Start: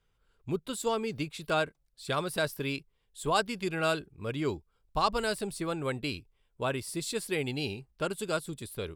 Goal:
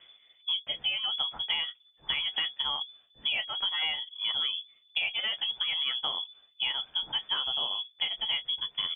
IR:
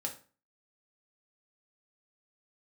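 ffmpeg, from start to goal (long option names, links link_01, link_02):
-af "aecho=1:1:11|32:0.562|0.141,areverse,acompressor=mode=upward:threshold=-33dB:ratio=2.5,areverse,equalizer=frequency=140:width_type=o:width=0.43:gain=13,lowpass=frequency=3000:width_type=q:width=0.5098,lowpass=frequency=3000:width_type=q:width=0.6013,lowpass=frequency=3000:width_type=q:width=0.9,lowpass=frequency=3000:width_type=q:width=2.563,afreqshift=-3500,acompressor=threshold=-31dB:ratio=10,volume=4dB"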